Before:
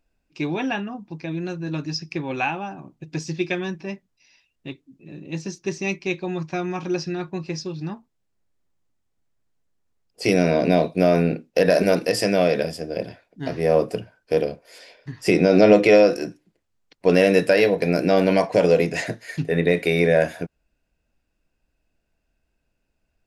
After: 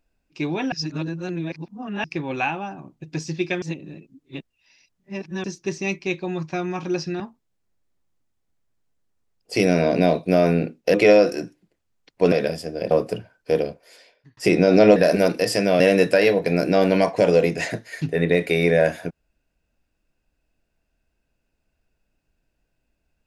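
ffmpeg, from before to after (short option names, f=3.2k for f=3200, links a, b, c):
-filter_complex "[0:a]asplit=12[a][b][c][d][e][f][g][h][i][j][k][l];[a]atrim=end=0.722[m];[b]atrim=start=0.718:end=2.042,asetpts=PTS-STARTPTS,areverse[n];[c]atrim=start=2.038:end=3.622[o];[d]atrim=start=3.618:end=5.442,asetpts=PTS-STARTPTS,areverse[p];[e]atrim=start=5.438:end=7.202[q];[f]atrim=start=7.888:end=11.632[r];[g]atrim=start=15.778:end=17.162[s];[h]atrim=start=12.468:end=13.062[t];[i]atrim=start=13.728:end=15.19,asetpts=PTS-STARTPTS,afade=t=out:st=0.782:d=0.68[u];[j]atrim=start=15.19:end=15.782,asetpts=PTS-STARTPTS,afade=t=in:d=0.004:c=hsin[v];[k]atrim=start=11.628:end=12.472[w];[l]atrim=start=17.158[x];[m][n]acrossfade=d=0.004:c1=hsin:c2=hsin[y];[y][o]acrossfade=d=0.004:c1=hsin:c2=hsin[z];[z][p]acrossfade=d=0.004:c1=hsin:c2=hsin[aa];[aa][q]acrossfade=d=0.004:c1=hsin:c2=hsin[ab];[ab][r]acrossfade=d=0.004:c1=hsin:c2=hsin[ac];[ac][s]acrossfade=d=0.004:c1=hsin:c2=hsin[ad];[ad][t]acrossfade=d=0.004:c1=hsin:c2=hsin[ae];[u][v]concat=n=2:v=0:a=1[af];[ae][af]acrossfade=d=0.004:c1=hsin:c2=hsin[ag];[ag][w]acrossfade=d=0.004:c1=hsin:c2=hsin[ah];[ah][x]acrossfade=d=0.004:c1=hsin:c2=hsin"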